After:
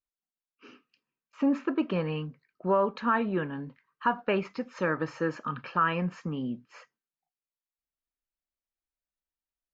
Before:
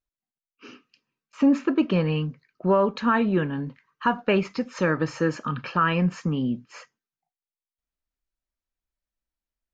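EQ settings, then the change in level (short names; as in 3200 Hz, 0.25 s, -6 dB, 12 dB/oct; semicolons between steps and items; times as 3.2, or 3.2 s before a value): LPF 3100 Hz 6 dB/oct; dynamic EQ 1100 Hz, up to +3 dB, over -34 dBFS, Q 0.75; low shelf 190 Hz -6.5 dB; -5.0 dB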